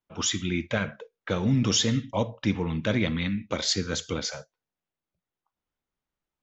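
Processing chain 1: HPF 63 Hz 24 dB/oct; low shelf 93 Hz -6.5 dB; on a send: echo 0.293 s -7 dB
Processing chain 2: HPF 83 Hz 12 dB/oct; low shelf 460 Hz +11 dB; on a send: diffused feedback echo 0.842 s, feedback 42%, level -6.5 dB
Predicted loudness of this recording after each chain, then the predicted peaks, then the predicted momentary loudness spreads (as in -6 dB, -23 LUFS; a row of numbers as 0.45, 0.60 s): -27.5, -20.5 LUFS; -11.5, -3.5 dBFS; 10, 18 LU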